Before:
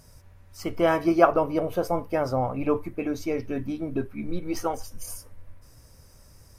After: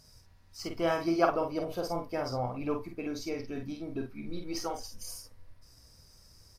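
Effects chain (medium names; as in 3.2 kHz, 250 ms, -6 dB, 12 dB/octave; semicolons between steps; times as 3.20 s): peaking EQ 4.7 kHz +11 dB 0.85 oct; band-stop 560 Hz, Q 17; doubling 48 ms -5 dB; trim -8.5 dB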